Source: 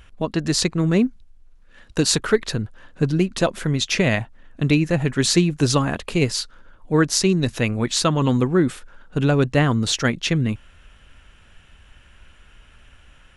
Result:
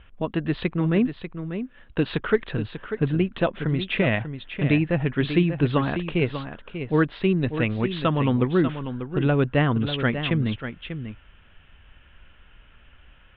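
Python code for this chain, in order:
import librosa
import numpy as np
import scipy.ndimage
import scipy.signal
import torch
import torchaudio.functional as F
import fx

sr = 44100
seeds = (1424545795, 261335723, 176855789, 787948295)

p1 = scipy.signal.sosfilt(scipy.signal.butter(12, 3500.0, 'lowpass', fs=sr, output='sos'), x)
p2 = p1 + fx.echo_single(p1, sr, ms=592, db=-9.5, dry=0)
y = F.gain(torch.from_numpy(p2), -3.0).numpy()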